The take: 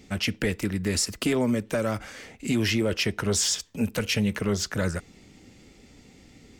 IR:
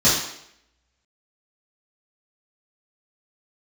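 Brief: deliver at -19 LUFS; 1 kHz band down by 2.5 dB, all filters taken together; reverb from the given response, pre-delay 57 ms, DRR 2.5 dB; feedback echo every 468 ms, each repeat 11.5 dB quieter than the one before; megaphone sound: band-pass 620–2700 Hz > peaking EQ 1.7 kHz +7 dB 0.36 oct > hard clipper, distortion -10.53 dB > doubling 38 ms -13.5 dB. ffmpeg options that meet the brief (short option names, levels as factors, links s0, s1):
-filter_complex "[0:a]equalizer=f=1000:t=o:g=-4,aecho=1:1:468|936|1404:0.266|0.0718|0.0194,asplit=2[s0][s1];[1:a]atrim=start_sample=2205,adelay=57[s2];[s1][s2]afir=irnorm=-1:irlink=0,volume=0.0794[s3];[s0][s3]amix=inputs=2:normalize=0,highpass=620,lowpass=2700,equalizer=f=1700:t=o:w=0.36:g=7,asoftclip=type=hard:threshold=0.0355,asplit=2[s4][s5];[s5]adelay=38,volume=0.211[s6];[s4][s6]amix=inputs=2:normalize=0,volume=5.01"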